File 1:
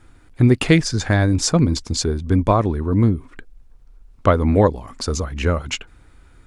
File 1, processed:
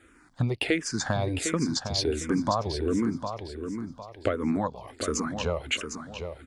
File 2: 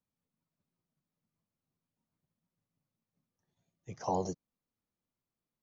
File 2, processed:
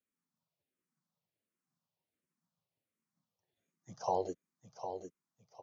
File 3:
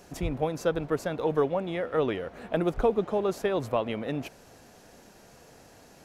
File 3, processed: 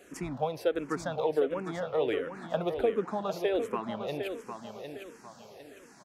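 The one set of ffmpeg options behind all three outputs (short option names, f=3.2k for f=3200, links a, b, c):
-filter_complex "[0:a]highpass=f=270:p=1,highshelf=f=10k:g=-5.5,acompressor=threshold=-23dB:ratio=4,asplit=2[a][b];[b]aecho=0:1:755|1510|2265|3020:0.398|0.135|0.046|0.0156[c];[a][c]amix=inputs=2:normalize=0,asplit=2[d][e];[e]afreqshift=-1.4[f];[d][f]amix=inputs=2:normalize=1,volume=2dB"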